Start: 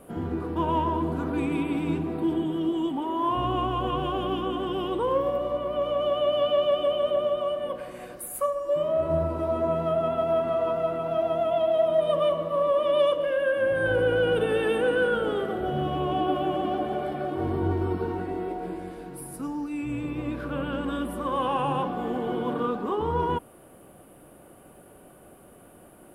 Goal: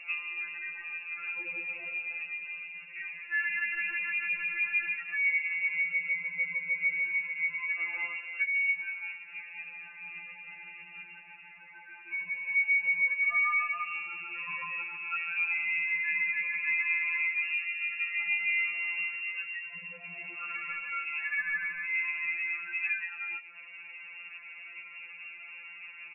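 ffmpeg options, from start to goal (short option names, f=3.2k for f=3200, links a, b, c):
-filter_complex "[0:a]lowshelf=f=66:g=11,acompressor=threshold=-34dB:ratio=6,asplit=2[a][b];[b]aecho=0:1:151:0.119[c];[a][c]amix=inputs=2:normalize=0,lowpass=f=2.4k:t=q:w=0.5098,lowpass=f=2.4k:t=q:w=0.6013,lowpass=f=2.4k:t=q:w=0.9,lowpass=f=2.4k:t=q:w=2.563,afreqshift=-2800,afftfilt=real='re*2.83*eq(mod(b,8),0)':imag='im*2.83*eq(mod(b,8),0)':win_size=2048:overlap=0.75,volume=5.5dB"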